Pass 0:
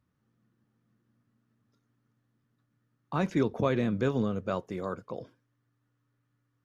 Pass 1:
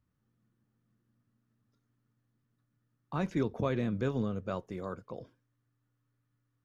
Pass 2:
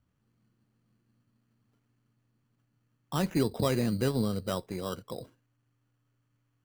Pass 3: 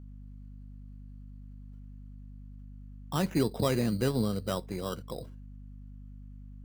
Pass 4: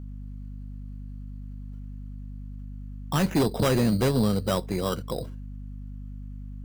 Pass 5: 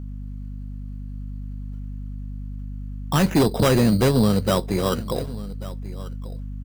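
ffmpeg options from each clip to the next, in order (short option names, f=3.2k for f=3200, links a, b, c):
-af "lowshelf=f=78:g=10,volume=-5dB"
-af "acrusher=samples=10:mix=1:aa=0.000001,volume=3.5dB"
-af "aeval=exprs='val(0)+0.00562*(sin(2*PI*50*n/s)+sin(2*PI*2*50*n/s)/2+sin(2*PI*3*50*n/s)/3+sin(2*PI*4*50*n/s)/4+sin(2*PI*5*50*n/s)/5)':c=same"
-af "aeval=exprs='0.188*sin(PI/2*2.24*val(0)/0.188)':c=same,volume=-2.5dB"
-af "aecho=1:1:1139:0.133,volume=5dB"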